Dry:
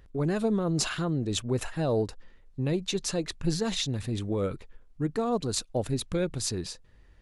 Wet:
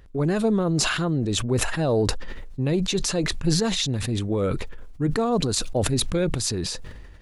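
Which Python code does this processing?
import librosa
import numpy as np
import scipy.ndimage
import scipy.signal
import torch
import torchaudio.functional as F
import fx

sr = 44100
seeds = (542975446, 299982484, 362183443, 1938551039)

y = fx.sustainer(x, sr, db_per_s=35.0)
y = F.gain(torch.from_numpy(y), 4.5).numpy()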